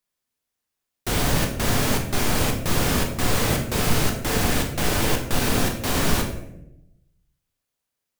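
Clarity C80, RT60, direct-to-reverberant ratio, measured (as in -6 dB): 10.0 dB, 0.85 s, 1.5 dB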